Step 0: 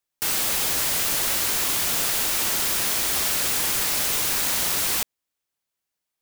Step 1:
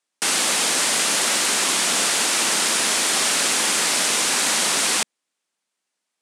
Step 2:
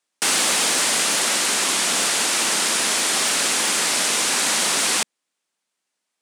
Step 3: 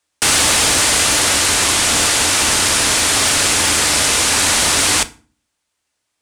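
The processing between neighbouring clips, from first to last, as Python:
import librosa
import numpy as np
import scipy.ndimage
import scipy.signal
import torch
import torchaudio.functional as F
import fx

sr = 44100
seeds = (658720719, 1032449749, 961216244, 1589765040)

y1 = scipy.signal.sosfilt(scipy.signal.ellip(3, 1.0, 70, [200.0, 9200.0], 'bandpass', fs=sr, output='sos'), x)
y1 = F.gain(torch.from_numpy(y1), 7.0).numpy()
y2 = fx.rider(y1, sr, range_db=10, speed_s=2.0)
y2 = np.clip(10.0 ** (12.5 / 20.0) * y2, -1.0, 1.0) / 10.0 ** (12.5 / 20.0)
y3 = fx.octave_divider(y2, sr, octaves=2, level_db=1.0)
y3 = fx.rev_fdn(y3, sr, rt60_s=0.38, lf_ratio=1.5, hf_ratio=0.8, size_ms=20.0, drr_db=11.5)
y3 = F.gain(torch.from_numpy(y3), 5.5).numpy()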